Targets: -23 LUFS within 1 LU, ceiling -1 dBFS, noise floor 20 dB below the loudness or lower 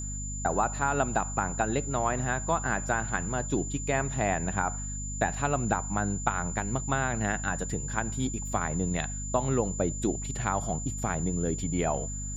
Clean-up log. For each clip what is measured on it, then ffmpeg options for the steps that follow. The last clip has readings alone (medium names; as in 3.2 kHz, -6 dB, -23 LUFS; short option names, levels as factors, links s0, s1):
hum 50 Hz; highest harmonic 250 Hz; hum level -34 dBFS; steady tone 7.1 kHz; tone level -37 dBFS; loudness -29.5 LUFS; peak level -10.0 dBFS; loudness target -23.0 LUFS
-> -af "bandreject=f=50:t=h:w=4,bandreject=f=100:t=h:w=4,bandreject=f=150:t=h:w=4,bandreject=f=200:t=h:w=4,bandreject=f=250:t=h:w=4"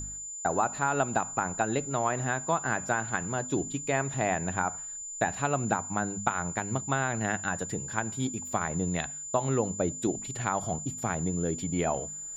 hum not found; steady tone 7.1 kHz; tone level -37 dBFS
-> -af "bandreject=f=7100:w=30"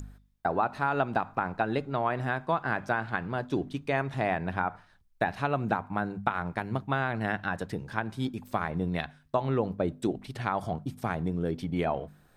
steady tone not found; loudness -31.0 LUFS; peak level -10.5 dBFS; loudness target -23.0 LUFS
-> -af "volume=2.51"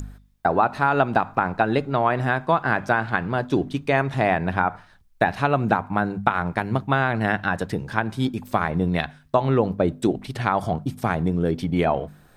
loudness -23.0 LUFS; peak level -2.5 dBFS; noise floor -54 dBFS